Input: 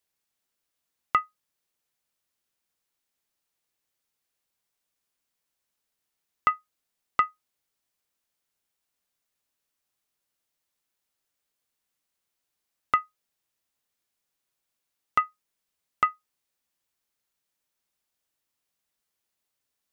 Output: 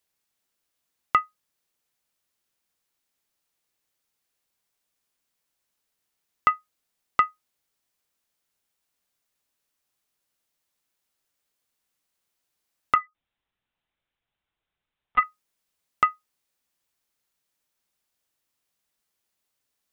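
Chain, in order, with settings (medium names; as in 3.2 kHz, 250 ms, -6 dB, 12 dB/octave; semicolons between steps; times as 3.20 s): 12.95–15.23 s: LPC vocoder at 8 kHz pitch kept; trim +2.5 dB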